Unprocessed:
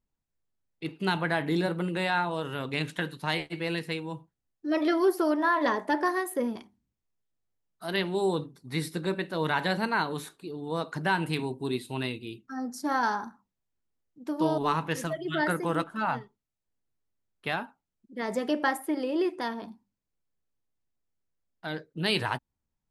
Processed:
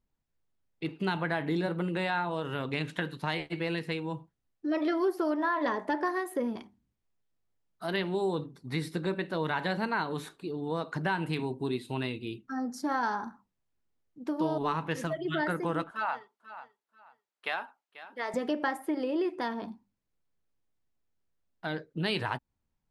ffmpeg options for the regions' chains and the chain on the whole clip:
-filter_complex "[0:a]asettb=1/sr,asplit=3[s0][s1][s2];[s0]atrim=end=15.914[s3];[s1]atrim=start=15.91:end=18.34,asetpts=PTS-STARTPTS,afade=t=in:d=0.004:c=qsin,afade=t=out:st=2.426:d=0.004:c=qsin,highpass=620,aecho=1:1:488|976:0.126|0.0315,atrim=end_sample=107163[s4];[s2]atrim=start=18.336[s5];[s3][s4]acrossfade=d=0.004:c1=hsin:c2=qsin[s6];[s6][s5]acrossfade=d=0.004:c1=qsin:c2=hsin,lowpass=f=3900:p=1,acompressor=threshold=0.02:ratio=2,volume=1.41"

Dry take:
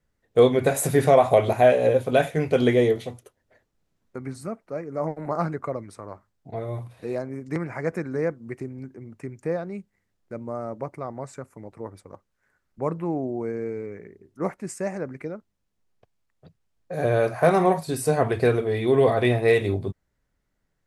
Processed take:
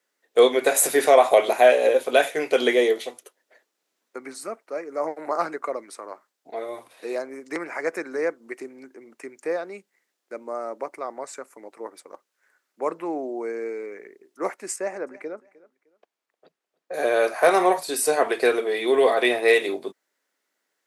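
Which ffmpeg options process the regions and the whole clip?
-filter_complex "[0:a]asettb=1/sr,asplit=3[s0][s1][s2];[s0]atrim=end=14.764[s3];[s1]atrim=start=14.76:end=16.94,asetpts=PTS-STARTPTS,afade=t=in:d=0.004:c=qsin,afade=t=out:st=2.176:d=0.004:c=qsin,highshelf=f=2700:g=-10.5,aecho=1:1:306|612:0.0891|0.0258,atrim=end_sample=96138[s4];[s2]atrim=start=16.936[s5];[s3][s4]acrossfade=d=0.004:c1=hsin:c2=qsin[s6];[s6][s5]acrossfade=d=0.004:c1=qsin:c2=hsin,highpass=f=310:w=0.5412,highpass=f=310:w=1.3066,tiltshelf=f=1300:g=-4,volume=1.58"

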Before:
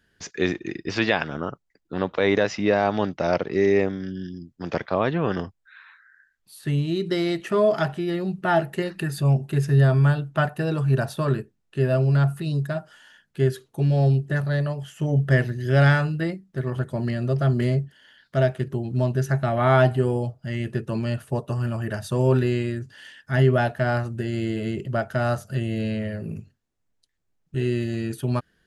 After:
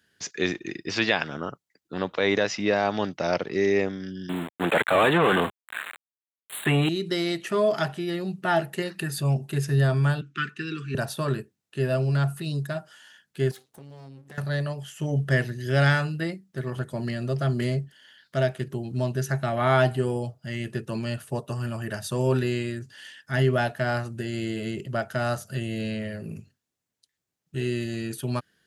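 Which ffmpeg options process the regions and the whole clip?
-filter_complex "[0:a]asettb=1/sr,asplit=3[s0][s1][s2];[s0]atrim=end=4.294[s3];[s1]atrim=start=4.29:end=6.89,asetpts=PTS-STARTPTS,afade=t=in:d=0.004:c=qsin,afade=t=out:st=2.596:d=0.004:c=qsin,aeval=exprs='val(0)*gte(abs(val(0)),0.00631)':c=same,asplit=2[s4][s5];[s5]highpass=f=720:p=1,volume=25.1,asoftclip=type=tanh:threshold=0.376[s6];[s4][s6]amix=inputs=2:normalize=0,lowpass=f=2100:p=1,volume=0.501,asuperstop=centerf=5400:order=8:qfactor=1.4[s7];[s2]atrim=start=6.886[s8];[s3][s7]acrossfade=d=0.004:c1=hsin:c2=qsin[s9];[s9][s8]acrossfade=d=0.004:c1=qsin:c2=hsin,asettb=1/sr,asplit=3[s10][s11][s12];[s10]atrim=end=10.214[s13];[s11]atrim=start=10.21:end=10.95,asetpts=PTS-STARTPTS,afade=t=in:d=0.004:c=qsin,afade=t=out:st=0.736:d=0.004:c=qsin,asuperstop=centerf=680:order=8:qfactor=0.92,highpass=f=170:w=0.5412,highpass=f=170:w=1.3066,equalizer=f=170:t=q:w=4:g=-4,equalizer=f=610:t=q:w=4:g=-7,equalizer=f=1000:t=q:w=4:g=-7,equalizer=f=2500:t=q:w=4:g=5,equalizer=f=4600:t=q:w=4:g=-4,lowpass=f=6400:w=0.5412,lowpass=f=6400:w=1.3066[s14];[s12]atrim=start=10.946[s15];[s13][s14]acrossfade=d=0.004:c1=hsin:c2=qsin[s16];[s16][s15]acrossfade=d=0.004:c1=qsin:c2=hsin,asettb=1/sr,asplit=3[s17][s18][s19];[s17]atrim=end=13.514[s20];[s18]atrim=start=13.51:end=14.38,asetpts=PTS-STARTPTS,afade=t=in:d=0.004:c=qsin,afade=t=out:st=0.866:d=0.004:c=qsin,aeval=exprs='max(val(0),0)':c=same,acompressor=threshold=0.0141:ratio=5:attack=3.2:release=140:knee=1:detection=peak[s21];[s19]atrim=start=14.376[s22];[s20][s21]acrossfade=d=0.004:c1=hsin:c2=qsin[s23];[s23][s22]acrossfade=d=0.004:c1=qsin:c2=hsin,highpass=97,highshelf=f=2400:g=8,volume=0.668"

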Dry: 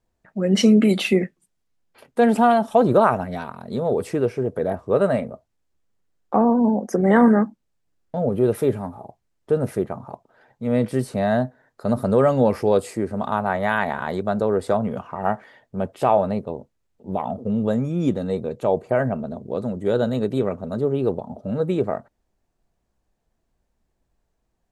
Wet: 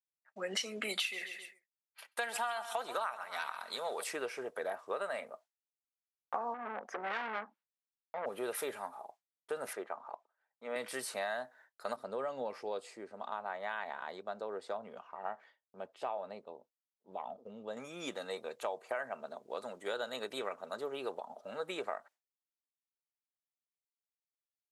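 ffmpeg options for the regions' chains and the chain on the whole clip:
-filter_complex "[0:a]asettb=1/sr,asplit=3[s0][s1][s2];[s0]atrim=end=0.984[s3];[s1]atrim=start=0.98:end=4.04,asetpts=PTS-STARTPTS,afade=t=in:d=0.004:c=qsin,afade=t=out:st=3.056:d=0.004:c=qsin,tiltshelf=f=790:g=-6,aecho=1:1:133|266|399:0.178|0.0676|0.0257,atrim=end_sample=134946[s4];[s2]atrim=start=4.036[s5];[s3][s4]acrossfade=d=0.004:c1=hsin:c2=qsin[s6];[s6][s5]acrossfade=d=0.004:c1=qsin:c2=hsin,asettb=1/sr,asplit=3[s7][s8][s9];[s7]atrim=end=6.544[s10];[s8]atrim=start=6.54:end=8.26,asetpts=PTS-STARTPTS,afade=t=in:d=0.004:c=qsin,afade=t=out:st=1.716:d=0.004:c=qsin,aeval=exprs='(tanh(11.2*val(0)+0.4)-tanh(0.4))/11.2':c=same,highpass=120,lowpass=2700[s11];[s9]atrim=start=8.256[s12];[s10][s11]acrossfade=d=0.004:c1=hsin:c2=qsin[s13];[s13][s12]acrossfade=d=0.004:c1=qsin:c2=hsin,asettb=1/sr,asplit=3[s14][s15][s16];[s14]atrim=end=9.734[s17];[s15]atrim=start=9.73:end=10.76,asetpts=PTS-STARTPTS,afade=t=in:d=0.004:c=qsin,afade=t=out:st=1.026:d=0.004:c=qsin,highpass=230,lowpass=7300,highshelf=f=2800:g=-10.5[s18];[s16]atrim=start=10.756[s19];[s17][s18]acrossfade=d=0.004:c1=hsin:c2=qsin[s20];[s20][s19]acrossfade=d=0.004:c1=qsin:c2=hsin,asettb=1/sr,asplit=3[s21][s22][s23];[s21]atrim=end=11.964[s24];[s22]atrim=start=11.96:end=17.77,asetpts=PTS-STARTPTS,afade=t=in:d=0.004:c=qsin,afade=t=out:st=5.806:d=0.004:c=qsin,lowpass=3700,equalizer=f=1700:w=0.44:g=-13[s25];[s23]atrim=start=17.766[s26];[s24][s25]acrossfade=d=0.004:c1=hsin:c2=qsin[s27];[s27][s26]acrossfade=d=0.004:c1=qsin:c2=hsin,agate=range=0.0224:threshold=0.00708:ratio=3:detection=peak,highpass=1100,acompressor=threshold=0.0224:ratio=10"

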